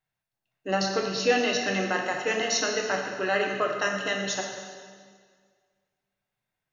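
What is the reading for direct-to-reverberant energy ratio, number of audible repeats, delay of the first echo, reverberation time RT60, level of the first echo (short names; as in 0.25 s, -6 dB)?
0.5 dB, none, none, 1.9 s, none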